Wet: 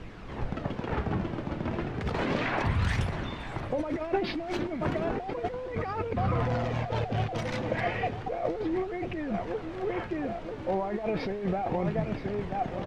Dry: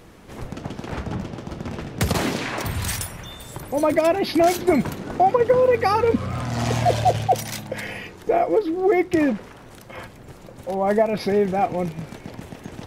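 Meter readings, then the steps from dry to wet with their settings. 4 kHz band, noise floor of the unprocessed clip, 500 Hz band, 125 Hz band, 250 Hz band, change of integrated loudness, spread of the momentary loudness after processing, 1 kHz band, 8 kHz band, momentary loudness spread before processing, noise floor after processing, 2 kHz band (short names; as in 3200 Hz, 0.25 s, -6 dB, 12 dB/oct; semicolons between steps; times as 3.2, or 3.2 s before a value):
-9.0 dB, -44 dBFS, -10.5 dB, -3.5 dB, -7.5 dB, -9.5 dB, 6 LU, -10.0 dB, under -20 dB, 18 LU, -39 dBFS, -5.5 dB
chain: on a send: feedback echo 0.976 s, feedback 44%, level -13 dB; on the sum: negative-ratio compressor -25 dBFS, ratio -1; added noise pink -42 dBFS; LPF 2600 Hz 12 dB/oct; flange 0.33 Hz, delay 0.3 ms, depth 3.2 ms, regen +68%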